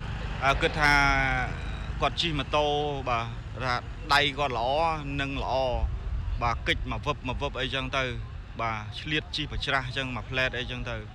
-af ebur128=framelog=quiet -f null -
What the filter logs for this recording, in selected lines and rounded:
Integrated loudness:
  I:         -27.7 LUFS
  Threshold: -37.8 LUFS
Loudness range:
  LRA:         4.6 LU
  Threshold: -48.2 LUFS
  LRA low:   -30.4 LUFS
  LRA high:  -25.8 LUFS